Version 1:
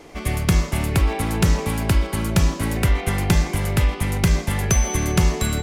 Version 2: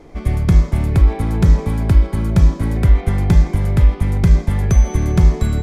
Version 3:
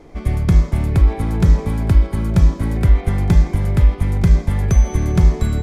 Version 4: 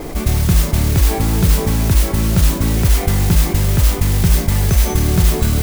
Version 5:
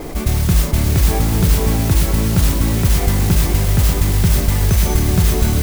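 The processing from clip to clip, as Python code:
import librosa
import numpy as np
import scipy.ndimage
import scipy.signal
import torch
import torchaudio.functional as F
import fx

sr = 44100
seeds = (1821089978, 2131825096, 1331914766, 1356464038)

y1 = fx.tilt_eq(x, sr, slope=-2.5)
y1 = fx.notch(y1, sr, hz=2800.0, q=8.7)
y1 = y1 * 10.0 ** (-2.5 / 20.0)
y2 = y1 + 10.0 ** (-21.0 / 20.0) * np.pad(y1, (int(915 * sr / 1000.0), 0))[:len(y1)]
y2 = y2 * 10.0 ** (-1.0 / 20.0)
y3 = fx.mod_noise(y2, sr, seeds[0], snr_db=13)
y3 = fx.env_flatten(y3, sr, amount_pct=50)
y3 = y3 * 10.0 ** (-2.5 / 20.0)
y4 = y3 + 10.0 ** (-7.5 / 20.0) * np.pad(y3, (int(588 * sr / 1000.0), 0))[:len(y3)]
y4 = y4 * 10.0 ** (-1.0 / 20.0)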